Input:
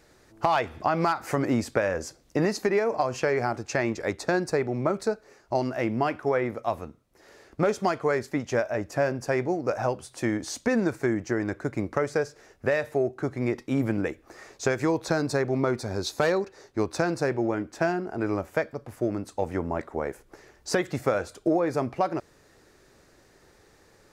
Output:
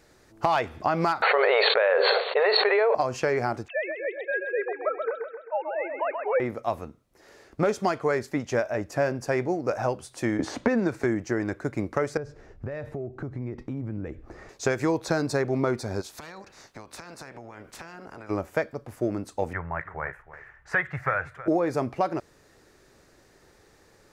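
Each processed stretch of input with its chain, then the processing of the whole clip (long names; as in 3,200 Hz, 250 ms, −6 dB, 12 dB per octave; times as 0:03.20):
0:01.22–0:02.95: linear-phase brick-wall band-pass 400–4,500 Hz + envelope flattener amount 100%
0:03.68–0:06.40: three sine waves on the formant tracks + high-pass filter 500 Hz 24 dB per octave + repeating echo 131 ms, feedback 51%, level −5.5 dB
0:10.39–0:11.04: low-pass filter 2,700 Hz 6 dB per octave + multiband upward and downward compressor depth 100%
0:12.17–0:14.49: RIAA equalisation playback + downward compressor 5 to 1, threshold −31 dBFS
0:16.00–0:18.29: ceiling on every frequency bin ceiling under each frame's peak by 18 dB + downward compressor 16 to 1, threshold −38 dBFS
0:19.53–0:21.48: drawn EQ curve 160 Hz 0 dB, 230 Hz −20 dB, 1,800 Hz +10 dB, 4,500 Hz −19 dB + single-tap delay 319 ms −15 dB
whole clip: no processing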